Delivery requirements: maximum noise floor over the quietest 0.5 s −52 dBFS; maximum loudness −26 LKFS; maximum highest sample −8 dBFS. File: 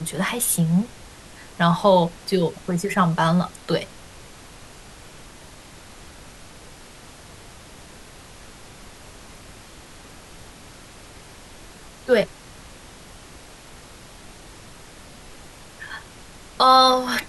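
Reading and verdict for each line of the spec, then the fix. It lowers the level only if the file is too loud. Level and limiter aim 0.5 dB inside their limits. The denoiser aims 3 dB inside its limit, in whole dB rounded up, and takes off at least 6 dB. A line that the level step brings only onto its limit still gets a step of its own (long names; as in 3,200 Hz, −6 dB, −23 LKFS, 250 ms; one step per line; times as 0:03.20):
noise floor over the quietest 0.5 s −44 dBFS: out of spec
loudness −20.0 LKFS: out of spec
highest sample −5.5 dBFS: out of spec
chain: broadband denoise 6 dB, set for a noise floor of −44 dBFS
level −6.5 dB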